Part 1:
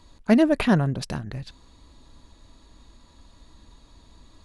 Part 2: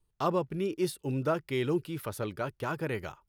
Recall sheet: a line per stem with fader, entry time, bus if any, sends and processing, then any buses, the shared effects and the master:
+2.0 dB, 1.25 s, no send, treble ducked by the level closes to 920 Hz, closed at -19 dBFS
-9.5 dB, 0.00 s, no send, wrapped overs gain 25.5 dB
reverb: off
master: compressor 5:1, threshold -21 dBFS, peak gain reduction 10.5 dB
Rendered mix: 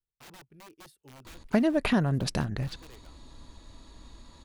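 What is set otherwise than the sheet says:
stem 1: missing treble ducked by the level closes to 920 Hz, closed at -19 dBFS; stem 2 -9.5 dB -> -19.5 dB

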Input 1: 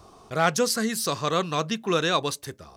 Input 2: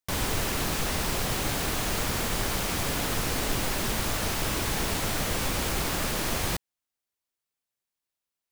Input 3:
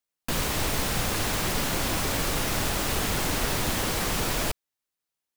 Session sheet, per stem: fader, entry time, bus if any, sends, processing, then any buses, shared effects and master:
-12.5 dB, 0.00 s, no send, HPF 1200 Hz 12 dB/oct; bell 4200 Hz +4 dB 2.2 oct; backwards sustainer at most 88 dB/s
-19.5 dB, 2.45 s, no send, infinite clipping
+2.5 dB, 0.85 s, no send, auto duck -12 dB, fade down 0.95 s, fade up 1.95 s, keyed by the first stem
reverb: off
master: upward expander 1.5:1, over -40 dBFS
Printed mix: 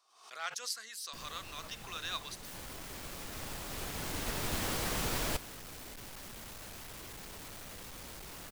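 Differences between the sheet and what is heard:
stem 2 -19.5 dB -> -13.5 dB; stem 3 +2.5 dB -> -6.5 dB

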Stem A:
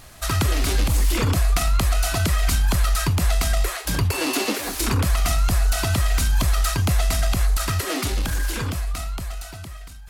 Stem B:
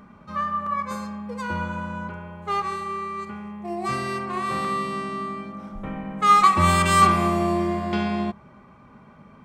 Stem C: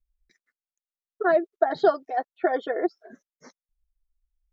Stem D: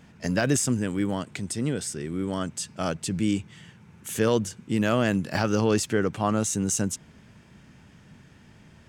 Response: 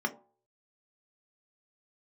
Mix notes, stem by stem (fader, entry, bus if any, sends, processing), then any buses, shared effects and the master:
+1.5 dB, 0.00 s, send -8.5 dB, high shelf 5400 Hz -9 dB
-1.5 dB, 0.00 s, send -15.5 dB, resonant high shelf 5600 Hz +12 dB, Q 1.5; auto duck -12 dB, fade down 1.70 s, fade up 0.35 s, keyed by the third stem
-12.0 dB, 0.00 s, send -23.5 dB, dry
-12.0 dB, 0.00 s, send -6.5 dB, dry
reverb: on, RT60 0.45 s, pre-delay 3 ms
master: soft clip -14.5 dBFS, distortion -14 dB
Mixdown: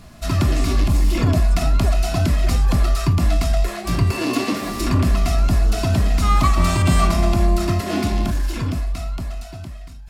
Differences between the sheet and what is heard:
stem B: missing resonant high shelf 5600 Hz +12 dB, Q 1.5; master: missing soft clip -14.5 dBFS, distortion -14 dB

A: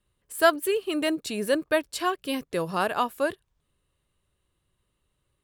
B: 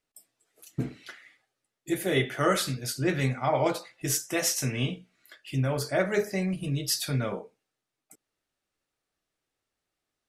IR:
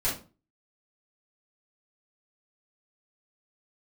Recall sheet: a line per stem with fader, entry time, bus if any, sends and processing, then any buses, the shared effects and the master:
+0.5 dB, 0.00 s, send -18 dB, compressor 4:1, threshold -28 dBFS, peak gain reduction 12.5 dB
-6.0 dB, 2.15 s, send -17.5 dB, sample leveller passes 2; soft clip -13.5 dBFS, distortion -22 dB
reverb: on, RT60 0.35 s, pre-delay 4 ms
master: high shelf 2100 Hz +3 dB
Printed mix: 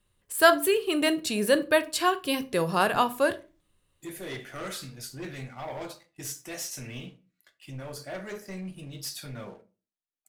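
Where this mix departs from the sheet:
stem A: missing compressor 4:1, threshold -28 dBFS, peak gain reduction 12.5 dB; stem B -6.0 dB -> -17.5 dB

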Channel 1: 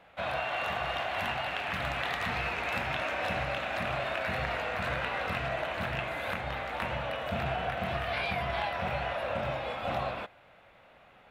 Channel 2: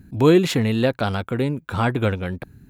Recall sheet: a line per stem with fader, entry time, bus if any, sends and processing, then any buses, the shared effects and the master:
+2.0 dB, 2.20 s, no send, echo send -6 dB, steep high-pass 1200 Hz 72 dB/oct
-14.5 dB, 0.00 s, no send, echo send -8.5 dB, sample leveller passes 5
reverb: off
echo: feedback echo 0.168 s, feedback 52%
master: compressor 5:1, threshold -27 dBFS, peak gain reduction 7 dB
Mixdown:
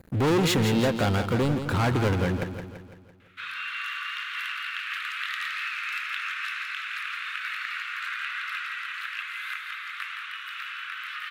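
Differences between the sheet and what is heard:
stem 1: entry 2.20 s -> 3.20 s; master: missing compressor 5:1, threshold -27 dBFS, peak gain reduction 7 dB

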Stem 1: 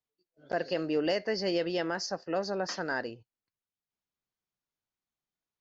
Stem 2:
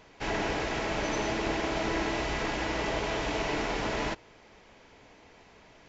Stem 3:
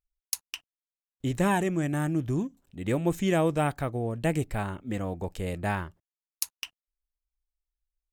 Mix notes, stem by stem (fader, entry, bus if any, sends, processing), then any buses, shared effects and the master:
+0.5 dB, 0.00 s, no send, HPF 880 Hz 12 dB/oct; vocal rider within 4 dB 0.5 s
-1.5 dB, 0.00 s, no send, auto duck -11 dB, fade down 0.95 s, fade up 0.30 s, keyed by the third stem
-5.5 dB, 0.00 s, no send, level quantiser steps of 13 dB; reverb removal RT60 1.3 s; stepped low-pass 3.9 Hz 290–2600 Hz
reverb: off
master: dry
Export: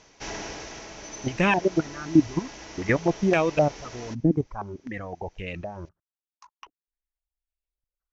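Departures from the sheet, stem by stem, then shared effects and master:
stem 1: muted; stem 3 -5.5 dB -> +5.5 dB; master: extra synth low-pass 6000 Hz, resonance Q 6.2

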